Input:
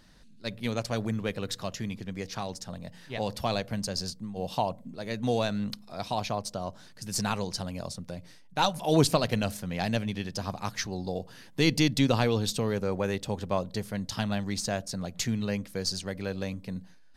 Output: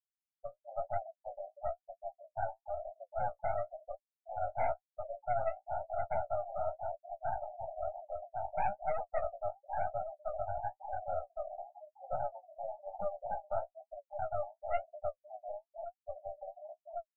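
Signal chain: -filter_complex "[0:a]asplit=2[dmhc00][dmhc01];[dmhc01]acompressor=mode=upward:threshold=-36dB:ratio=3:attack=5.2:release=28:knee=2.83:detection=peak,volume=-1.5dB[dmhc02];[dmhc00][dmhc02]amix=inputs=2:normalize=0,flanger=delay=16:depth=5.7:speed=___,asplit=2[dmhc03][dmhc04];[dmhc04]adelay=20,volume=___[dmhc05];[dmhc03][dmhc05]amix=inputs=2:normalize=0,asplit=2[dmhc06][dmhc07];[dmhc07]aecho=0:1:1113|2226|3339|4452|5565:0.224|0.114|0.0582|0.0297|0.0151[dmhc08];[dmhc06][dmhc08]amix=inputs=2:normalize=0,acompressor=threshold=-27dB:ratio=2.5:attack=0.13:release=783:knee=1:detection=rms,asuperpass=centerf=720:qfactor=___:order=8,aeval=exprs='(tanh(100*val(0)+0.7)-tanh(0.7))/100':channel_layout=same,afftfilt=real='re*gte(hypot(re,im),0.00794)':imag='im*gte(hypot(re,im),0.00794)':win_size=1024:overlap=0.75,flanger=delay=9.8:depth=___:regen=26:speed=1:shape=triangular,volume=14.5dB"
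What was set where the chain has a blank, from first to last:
0.34, -10dB, 2.6, 10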